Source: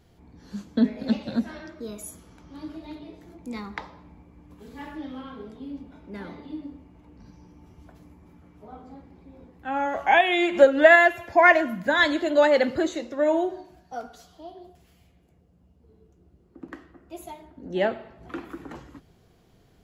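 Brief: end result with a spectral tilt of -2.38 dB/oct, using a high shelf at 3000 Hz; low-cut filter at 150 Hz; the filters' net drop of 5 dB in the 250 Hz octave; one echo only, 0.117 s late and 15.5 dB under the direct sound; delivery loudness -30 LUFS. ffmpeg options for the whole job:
-af "highpass=150,equalizer=f=250:t=o:g=-6,highshelf=f=3k:g=8.5,aecho=1:1:117:0.168,volume=-10dB"

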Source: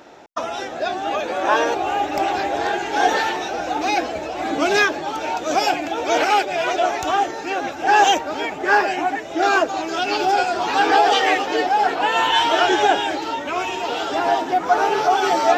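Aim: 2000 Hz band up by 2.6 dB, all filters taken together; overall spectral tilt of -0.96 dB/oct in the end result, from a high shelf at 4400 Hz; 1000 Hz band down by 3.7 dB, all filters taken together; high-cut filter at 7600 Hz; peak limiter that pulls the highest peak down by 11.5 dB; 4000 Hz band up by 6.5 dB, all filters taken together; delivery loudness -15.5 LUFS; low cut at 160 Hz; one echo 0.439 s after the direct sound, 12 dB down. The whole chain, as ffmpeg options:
-af "highpass=160,lowpass=7.6k,equalizer=f=1k:t=o:g=-6.5,equalizer=f=2k:t=o:g=3.5,equalizer=f=4k:t=o:g=4.5,highshelf=f=4.4k:g=7,alimiter=limit=-14dB:level=0:latency=1,aecho=1:1:439:0.251,volume=7dB"

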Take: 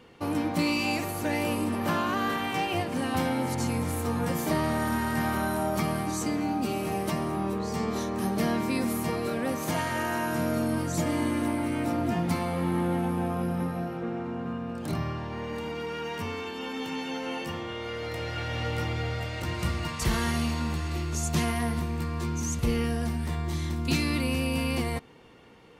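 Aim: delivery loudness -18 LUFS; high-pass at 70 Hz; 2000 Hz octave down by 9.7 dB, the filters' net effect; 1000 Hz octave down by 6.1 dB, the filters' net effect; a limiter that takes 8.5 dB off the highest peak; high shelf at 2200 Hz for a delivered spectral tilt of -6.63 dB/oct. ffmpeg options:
-af "highpass=70,equalizer=f=1k:t=o:g=-5.5,equalizer=f=2k:t=o:g=-9,highshelf=f=2.2k:g=-3.5,volume=16dB,alimiter=limit=-8.5dB:level=0:latency=1"

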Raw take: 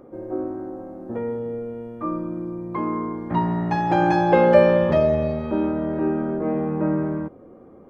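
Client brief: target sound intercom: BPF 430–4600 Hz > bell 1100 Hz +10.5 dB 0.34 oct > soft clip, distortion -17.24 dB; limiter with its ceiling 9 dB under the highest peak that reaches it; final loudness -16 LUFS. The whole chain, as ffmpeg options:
-af "alimiter=limit=-12.5dB:level=0:latency=1,highpass=430,lowpass=4.6k,equalizer=f=1.1k:t=o:w=0.34:g=10.5,asoftclip=threshold=-17.5dB,volume=11.5dB"

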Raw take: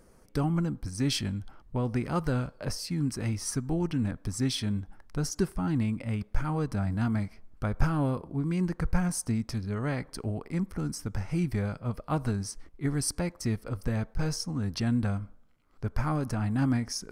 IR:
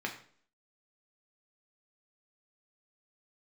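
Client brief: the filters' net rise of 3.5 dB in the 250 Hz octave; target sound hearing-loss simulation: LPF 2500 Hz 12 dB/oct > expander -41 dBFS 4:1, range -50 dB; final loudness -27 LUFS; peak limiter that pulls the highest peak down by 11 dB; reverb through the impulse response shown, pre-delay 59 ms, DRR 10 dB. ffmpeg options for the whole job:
-filter_complex "[0:a]equalizer=f=250:t=o:g=4.5,alimiter=limit=-22dB:level=0:latency=1,asplit=2[a][b];[1:a]atrim=start_sample=2205,adelay=59[c];[b][c]afir=irnorm=-1:irlink=0,volume=-14.5dB[d];[a][d]amix=inputs=2:normalize=0,lowpass=2.5k,agate=range=-50dB:threshold=-41dB:ratio=4,volume=4.5dB"

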